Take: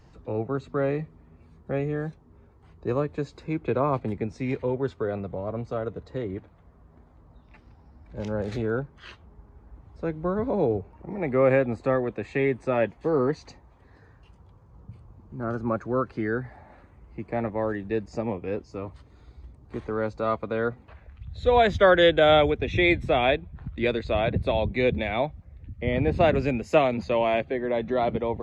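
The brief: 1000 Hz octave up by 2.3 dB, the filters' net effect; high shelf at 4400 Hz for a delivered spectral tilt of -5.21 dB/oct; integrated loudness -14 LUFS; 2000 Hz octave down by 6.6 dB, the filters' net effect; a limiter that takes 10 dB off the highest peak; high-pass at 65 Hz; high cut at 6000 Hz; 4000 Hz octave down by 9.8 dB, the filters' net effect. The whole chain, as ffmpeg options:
-af "highpass=65,lowpass=6k,equalizer=f=1k:t=o:g=6,equalizer=f=2k:t=o:g=-8.5,equalizer=f=4k:t=o:g=-7.5,highshelf=f=4.4k:g=-3,volume=14.5dB,alimiter=limit=-2dB:level=0:latency=1"

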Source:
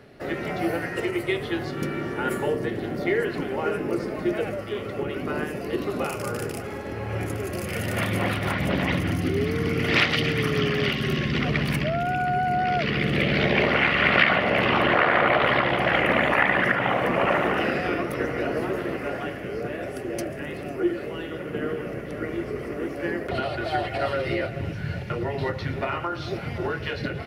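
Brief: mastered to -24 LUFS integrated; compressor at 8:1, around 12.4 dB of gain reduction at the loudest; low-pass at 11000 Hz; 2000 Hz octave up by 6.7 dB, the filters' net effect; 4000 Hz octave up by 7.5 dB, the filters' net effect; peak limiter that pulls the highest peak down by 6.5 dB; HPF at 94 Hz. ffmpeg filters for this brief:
-af "highpass=94,lowpass=11k,equalizer=f=2k:t=o:g=6,equalizer=f=4k:t=o:g=8,acompressor=threshold=-22dB:ratio=8,volume=3dB,alimiter=limit=-13.5dB:level=0:latency=1"

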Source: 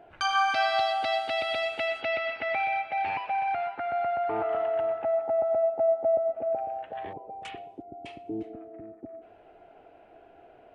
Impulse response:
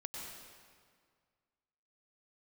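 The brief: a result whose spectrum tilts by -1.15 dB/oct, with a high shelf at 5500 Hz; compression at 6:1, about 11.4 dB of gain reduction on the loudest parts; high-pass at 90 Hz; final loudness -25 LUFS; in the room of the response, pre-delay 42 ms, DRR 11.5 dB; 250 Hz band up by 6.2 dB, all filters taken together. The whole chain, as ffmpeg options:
-filter_complex "[0:a]highpass=90,equalizer=f=250:t=o:g=9,highshelf=f=5.5k:g=4.5,acompressor=threshold=-33dB:ratio=6,asplit=2[a][b];[1:a]atrim=start_sample=2205,adelay=42[c];[b][c]afir=irnorm=-1:irlink=0,volume=-10.5dB[d];[a][d]amix=inputs=2:normalize=0,volume=10.5dB"

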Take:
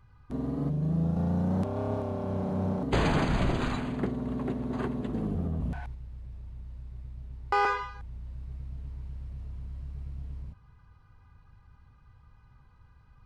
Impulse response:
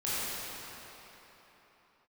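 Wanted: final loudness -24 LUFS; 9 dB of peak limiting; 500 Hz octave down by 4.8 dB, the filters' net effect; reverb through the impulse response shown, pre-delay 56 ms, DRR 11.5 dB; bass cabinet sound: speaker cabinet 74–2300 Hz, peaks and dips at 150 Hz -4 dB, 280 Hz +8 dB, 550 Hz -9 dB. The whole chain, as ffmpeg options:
-filter_complex "[0:a]equalizer=f=500:t=o:g=-4,alimiter=level_in=1.5dB:limit=-24dB:level=0:latency=1,volume=-1.5dB,asplit=2[a][b];[1:a]atrim=start_sample=2205,adelay=56[c];[b][c]afir=irnorm=-1:irlink=0,volume=-20.5dB[d];[a][d]amix=inputs=2:normalize=0,highpass=f=74:w=0.5412,highpass=f=74:w=1.3066,equalizer=f=150:t=q:w=4:g=-4,equalizer=f=280:t=q:w=4:g=8,equalizer=f=550:t=q:w=4:g=-9,lowpass=f=2.3k:w=0.5412,lowpass=f=2.3k:w=1.3066,volume=10.5dB"

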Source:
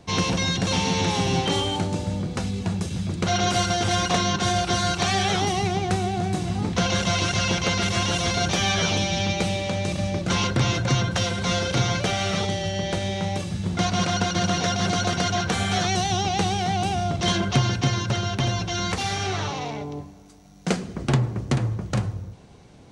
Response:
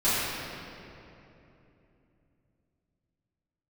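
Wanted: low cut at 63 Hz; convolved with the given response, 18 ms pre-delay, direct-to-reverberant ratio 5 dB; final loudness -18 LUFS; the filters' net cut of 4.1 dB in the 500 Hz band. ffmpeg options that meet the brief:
-filter_complex "[0:a]highpass=63,equalizer=f=500:t=o:g=-6,asplit=2[a][b];[1:a]atrim=start_sample=2205,adelay=18[c];[b][c]afir=irnorm=-1:irlink=0,volume=-20dB[d];[a][d]amix=inputs=2:normalize=0,volume=5.5dB"

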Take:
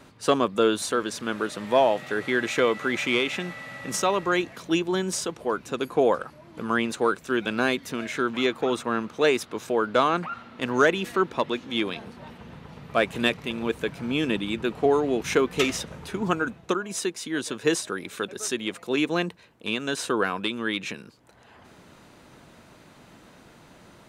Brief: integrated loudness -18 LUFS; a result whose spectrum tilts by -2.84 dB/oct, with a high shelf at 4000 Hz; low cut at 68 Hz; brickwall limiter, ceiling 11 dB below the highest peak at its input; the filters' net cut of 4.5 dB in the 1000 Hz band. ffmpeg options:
-af "highpass=68,equalizer=f=1k:t=o:g=-7,highshelf=f=4k:g=8,volume=11.5dB,alimiter=limit=-6.5dB:level=0:latency=1"

